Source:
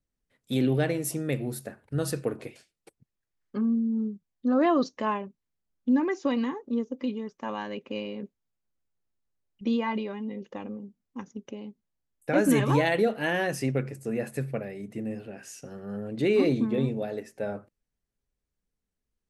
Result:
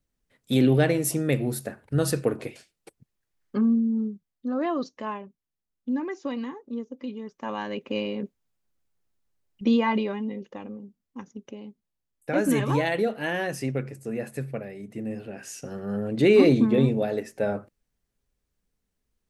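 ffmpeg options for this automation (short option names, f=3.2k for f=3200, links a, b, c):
-af "volume=22dB,afade=t=out:st=3.56:d=0.94:silence=0.334965,afade=t=in:st=7.07:d=0.96:silence=0.316228,afade=t=out:st=10.1:d=0.42:silence=0.473151,afade=t=in:st=14.89:d=0.86:silence=0.446684"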